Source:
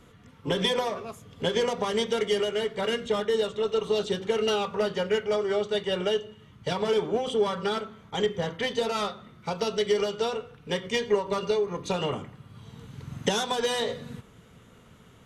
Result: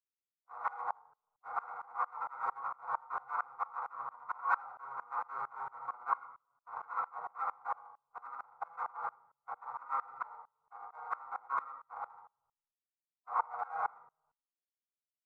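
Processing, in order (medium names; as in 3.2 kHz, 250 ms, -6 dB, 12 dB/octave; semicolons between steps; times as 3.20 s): Schmitt trigger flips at -22 dBFS; comb 5.4 ms, depth 98%; peak limiter -24 dBFS, peak gain reduction 7 dB; formant shift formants -2 st; elliptic band-pass 800–1600 Hz, stop band 40 dB; formant-preserving pitch shift -7.5 st; delay 79 ms -8.5 dB; reverberation RT60 0.50 s, pre-delay 3 ms, DRR 0.5 dB; sawtooth tremolo in dB swelling 4.4 Hz, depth 26 dB; trim +10 dB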